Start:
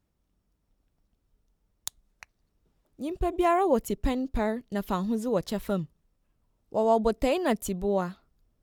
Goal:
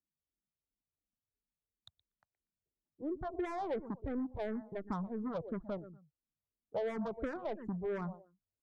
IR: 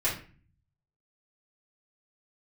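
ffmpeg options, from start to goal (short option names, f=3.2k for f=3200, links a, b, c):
-filter_complex "[0:a]adynamicsmooth=sensitivity=2:basefreq=970,afftdn=nr=20:nf=-36,highpass=f=120:p=1,equalizer=f=5.8k:w=1.9:g=-8.5,asplit=2[a][b];[b]adelay=120,lowpass=f=3.2k:p=1,volume=-20dB,asplit=2[c][d];[d]adelay=120,lowpass=f=3.2k:p=1,volume=0.21[e];[a][c][e]amix=inputs=3:normalize=0,asoftclip=type=tanh:threshold=-27.5dB,equalizer=f=2.7k:w=6.2:g=-10,acrossover=split=860|2500[f][g][h];[f]acompressor=threshold=-35dB:ratio=4[i];[g]acompressor=threshold=-46dB:ratio=4[j];[h]acompressor=threshold=-58dB:ratio=4[k];[i][j][k]amix=inputs=3:normalize=0,asplit=2[l][m];[m]afreqshift=-2.9[n];[l][n]amix=inputs=2:normalize=1,volume=1.5dB"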